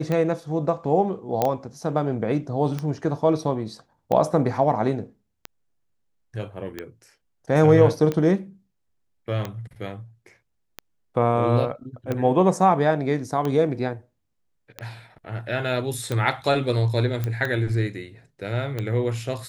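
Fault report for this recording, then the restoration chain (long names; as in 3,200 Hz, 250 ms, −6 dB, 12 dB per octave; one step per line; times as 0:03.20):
scratch tick 45 rpm −14 dBFS
0:01.42: click −8 dBFS
0:17.24: click −14 dBFS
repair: click removal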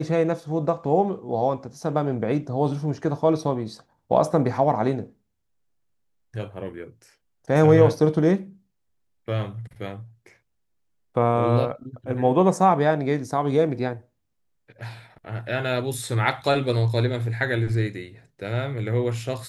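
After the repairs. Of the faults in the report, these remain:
none of them is left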